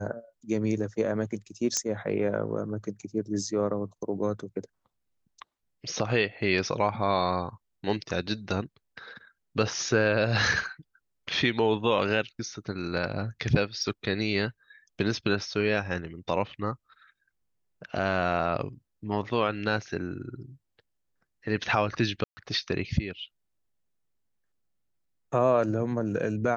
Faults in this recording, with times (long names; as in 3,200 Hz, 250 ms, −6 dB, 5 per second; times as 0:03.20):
0:01.77: click −12 dBFS
0:13.83: drop-out 3.4 ms
0:22.24–0:22.37: drop-out 130 ms